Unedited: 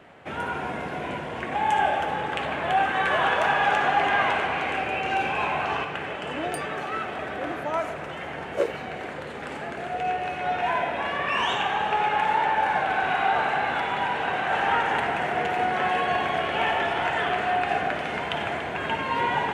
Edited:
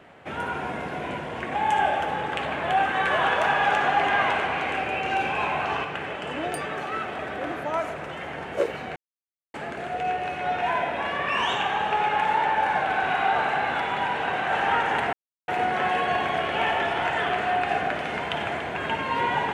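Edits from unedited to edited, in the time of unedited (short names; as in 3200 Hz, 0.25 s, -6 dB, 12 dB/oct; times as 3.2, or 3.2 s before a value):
8.96–9.54 mute
15.13–15.48 mute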